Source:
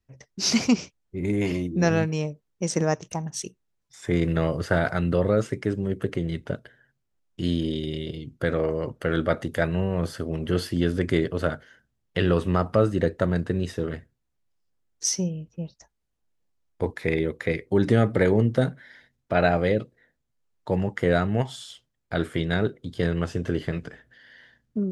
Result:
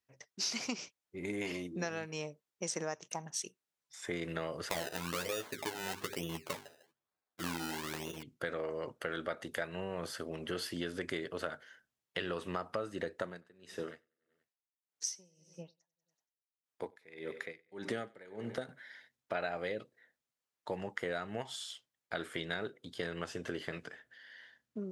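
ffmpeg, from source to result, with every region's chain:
ffmpeg -i in.wav -filter_complex "[0:a]asettb=1/sr,asplit=3[link_01][link_02][link_03];[link_01]atrim=end=4.694[link_04];[link_02]atrim=start=4.69:end=8.23,asetpts=PTS-STARTPTS,afade=type=in:duration=0.004:curve=qsin,afade=type=out:start_time=3.536:duration=0.004:curve=qsin,bandreject=frequency=50:width_type=h:width=6,bandreject=frequency=100:width_type=h:width=6,bandreject=frequency=150:width_type=h:width=6,bandreject=frequency=200:width_type=h:width=6,bandreject=frequency=250:width_type=h:width=6,bandreject=frequency=300:width_type=h:width=6,bandreject=frequency=350:width_type=h:width=6,bandreject=frequency=400:width_type=h:width=6,bandreject=frequency=450:width_type=h:width=6,acrusher=samples=27:mix=1:aa=0.000001:lfo=1:lforange=27:lforate=1.1,asplit=2[link_05][link_06];[link_06]adelay=12,volume=-4dB[link_07];[link_05][link_07]amix=inputs=2:normalize=0,atrim=end_sample=156114[link_08];[link_03]atrim=start=8.226[link_09];[link_04][link_08]acrossfade=duration=0.004:curve1=hsin:curve2=qsin[link_10];[link_10][link_09]acrossfade=duration=0.004:curve1=qsin:curve2=hsin,asettb=1/sr,asplit=3[link_11][link_12][link_13];[link_11]atrim=end=13.234[link_14];[link_12]atrim=start=13.23:end=18.69,asetpts=PTS-STARTPTS,afade=type=in:duration=0.004:curve=qsin,afade=type=out:start_time=5.456:duration=0.004:curve=qsin,highpass=110,aecho=1:1:95|190|285|380|475:0.141|0.0763|0.0412|0.0222|0.012,atrim=end_sample=240786,aeval=exprs='val(0)*pow(10,-26*(0.5-0.5*cos(2*PI*1.7*n/s))/20)':channel_layout=same[link_15];[link_13]atrim=start=18.686[link_16];[link_14][link_15]acrossfade=duration=0.004:curve1=hsin:curve2=qsin[link_17];[link_17][link_16]acrossfade=duration=0.004:curve1=qsin:curve2=hsin,highpass=frequency=810:poles=1,acompressor=threshold=-31dB:ratio=6,volume=-2.5dB" out.wav

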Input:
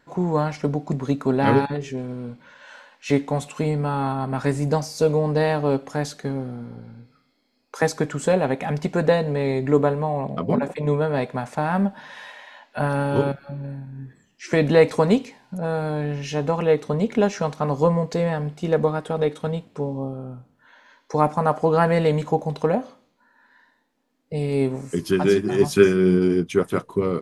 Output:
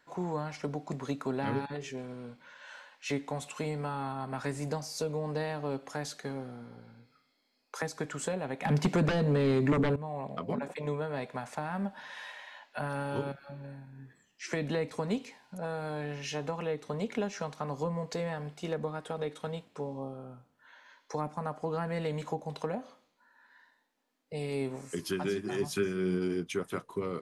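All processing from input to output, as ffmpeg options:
ffmpeg -i in.wav -filter_complex "[0:a]asettb=1/sr,asplit=3[link_01][link_02][link_03];[link_01]atrim=end=8.654[link_04];[link_02]atrim=start=8.65:end=9.96,asetpts=PTS-STARTPTS,afade=type=in:duration=0.004:curve=qsin,afade=type=out:start_time=1.306:duration=0.004:curve=qsin,highpass=140,aeval=exprs='0.596*sin(PI/2*3.98*val(0)/0.596)':channel_layout=same[link_05];[link_03]atrim=start=9.956[link_06];[link_04][link_05]acrossfade=duration=0.004:curve1=hsin:curve2=qsin[link_07];[link_07][link_06]acrossfade=duration=0.004:curve1=qsin:curve2=hsin,lowshelf=frequency=440:gain=-11,acrossover=split=290[link_08][link_09];[link_09]acompressor=threshold=-30dB:ratio=6[link_10];[link_08][link_10]amix=inputs=2:normalize=0,volume=-3.5dB" out.wav

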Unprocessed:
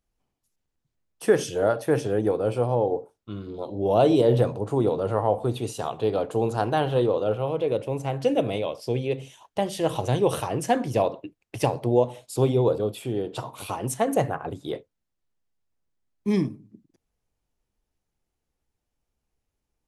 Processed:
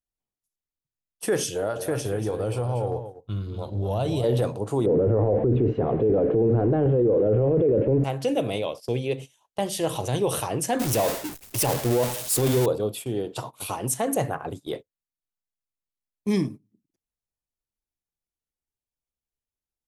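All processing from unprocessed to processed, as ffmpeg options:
ffmpeg -i in.wav -filter_complex "[0:a]asettb=1/sr,asplit=3[link_01][link_02][link_03];[link_01]atrim=end=1.524[link_04];[link_02]atrim=start=1.52:end=4.24,asetpts=PTS-STARTPTS,afade=type=in:duration=0.004:curve=qsin,afade=type=out:start_time=2.716:duration=0.004:curve=qsin,asubboost=boost=11:cutoff=110,acompressor=threshold=-22dB:ratio=4:attack=3.2:release=140:knee=1:detection=peak,aecho=1:1:236:0.335,atrim=end_sample=119952[link_05];[link_03]atrim=start=4.236[link_06];[link_04][link_05]acrossfade=duration=0.004:curve1=hsin:curve2=qsin[link_07];[link_07][link_06]acrossfade=duration=0.004:curve1=qsin:curve2=hsin,asettb=1/sr,asplit=3[link_08][link_09][link_10];[link_08]atrim=end=4.864[link_11];[link_09]atrim=start=4.86:end=8.04,asetpts=PTS-STARTPTS,afade=type=in:duration=0.004:curve=qsin,afade=type=out:start_time=3.176:duration=0.004:curve=qsin,aeval=exprs='val(0)+0.5*0.0141*sgn(val(0))':channel_layout=same,lowpass=frequency=2000:width=0.5412,lowpass=frequency=2000:width=1.3066,lowshelf=frequency=620:width_type=q:width=1.5:gain=13[link_12];[link_10]atrim=start=8.036[link_13];[link_11][link_12]acrossfade=duration=0.004:curve1=hsin:curve2=qsin[link_14];[link_14][link_13]acrossfade=duration=0.004:curve1=qsin:curve2=hsin,asettb=1/sr,asplit=3[link_15][link_16][link_17];[link_15]atrim=end=10.794[link_18];[link_16]atrim=start=10.79:end=12.66,asetpts=PTS-STARTPTS,afade=type=in:duration=0.004:curve=qsin,afade=type=out:start_time=1.866:duration=0.004:curve=qsin,aeval=exprs='val(0)+0.5*0.0596*sgn(val(0))':channel_layout=same,agate=range=-33dB:threshold=-25dB:ratio=3:release=100:detection=peak,highshelf=frequency=6400:gain=4.5[link_19];[link_17]atrim=start=12.656[link_20];[link_18][link_19]acrossfade=duration=0.004:curve1=hsin:curve2=qsin[link_21];[link_21][link_20]acrossfade=duration=0.004:curve1=qsin:curve2=hsin,aemphasis=mode=production:type=cd,agate=range=-16dB:threshold=-35dB:ratio=16:detection=peak,alimiter=limit=-14.5dB:level=0:latency=1:release=11" out.wav

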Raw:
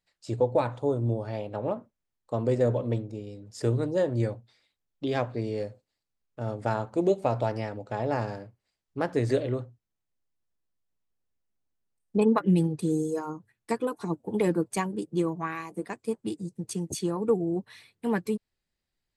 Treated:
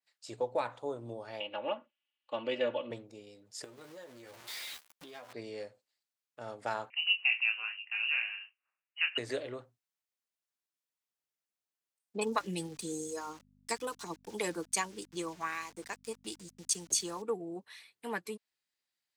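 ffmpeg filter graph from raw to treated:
ffmpeg -i in.wav -filter_complex "[0:a]asettb=1/sr,asplit=3[link_01][link_02][link_03];[link_01]atrim=end=1.404[link_04];[link_02]atrim=start=1.4:end=2.91,asetpts=PTS-STARTPTS,afade=type=in:duration=0.004:curve=qsin,afade=type=out:start_time=1.506:duration=0.004:curve=qsin,lowpass=frequency=2900:width_type=q:width=8.2,lowshelf=frequency=65:gain=-12,aecho=1:1:3.5:0.68,atrim=end_sample=66591[link_05];[link_03]atrim=start=2.906[link_06];[link_04][link_05]acrossfade=duration=0.004:curve1=hsin:curve2=qsin[link_07];[link_07][link_06]acrossfade=duration=0.004:curve1=qsin:curve2=hsin,asettb=1/sr,asplit=3[link_08][link_09][link_10];[link_08]atrim=end=3.644[link_11];[link_09]atrim=start=3.64:end=5.33,asetpts=PTS-STARTPTS,afade=type=in:duration=0.004:curve=qsin,afade=type=out:start_time=1.686:duration=0.004:curve=qsin,aeval=exprs='val(0)+0.5*0.0158*sgn(val(0))':channel_layout=same,asplit=2[link_12][link_13];[link_13]adelay=12,volume=-5dB[link_14];[link_12][link_14]amix=inputs=2:normalize=0,atrim=end_sample=74529,acompressor=threshold=-36dB:ratio=12:attack=3.2:release=140:knee=1:detection=peak[link_15];[link_10]atrim=start=5.326[link_16];[link_11][link_15]acrossfade=duration=0.004:curve1=hsin:curve2=qsin[link_17];[link_17][link_16]acrossfade=duration=0.004:curve1=qsin:curve2=hsin,asettb=1/sr,asplit=3[link_18][link_19][link_20];[link_18]atrim=end=6.904[link_21];[link_19]atrim=start=6.9:end=9.18,asetpts=PTS-STARTPTS,afade=type=in:duration=0.004:curve=qsin,afade=type=out:start_time=2.276:duration=0.004:curve=qsin,highpass=frequency=480:width=0.5412,highpass=frequency=480:width=1.3066,asplit=2[link_22][link_23];[link_23]adelay=26,volume=-5.5dB[link_24];[link_22][link_24]amix=inputs=2:normalize=0,atrim=end_sample=100548,lowpass=frequency=2800:width_type=q:width=0.5098,lowpass=frequency=2800:width_type=q:width=0.6013,lowpass=frequency=2800:width_type=q:width=0.9,lowpass=frequency=2800:width_type=q:width=2.563,afreqshift=-3300[link_25];[link_20]atrim=start=9.176[link_26];[link_21][link_25]acrossfade=duration=0.004:curve1=hsin:curve2=qsin[link_27];[link_27][link_26]acrossfade=duration=0.004:curve1=qsin:curve2=hsin,asettb=1/sr,asplit=3[link_28][link_29][link_30];[link_28]atrim=end=12.214[link_31];[link_29]atrim=start=12.21:end=17.22,asetpts=PTS-STARTPTS,afade=type=in:duration=0.004:curve=qsin,afade=type=out:start_time=5.006:duration=0.004:curve=qsin,aeval=exprs='val(0)*gte(abs(val(0)),0.00376)':channel_layout=same,equalizer=frequency=6100:width=0.84:gain=10.5,aeval=exprs='val(0)+0.00708*(sin(2*PI*50*n/s)+sin(2*PI*2*50*n/s)/2+sin(2*PI*3*50*n/s)/3+sin(2*PI*4*50*n/s)/4+sin(2*PI*5*50*n/s)/5)':channel_layout=same[link_32];[link_30]atrim=start=17.216[link_33];[link_31][link_32]acrossfade=duration=0.004:curve1=hsin:curve2=qsin[link_34];[link_34][link_33]acrossfade=duration=0.004:curve1=qsin:curve2=hsin,highpass=frequency=1400:poles=1,adynamicequalizer=threshold=0.00178:dfrequency=3400:dqfactor=0.7:tfrequency=3400:tqfactor=0.7:attack=5:release=100:ratio=0.375:range=2.5:mode=cutabove:tftype=highshelf" out.wav

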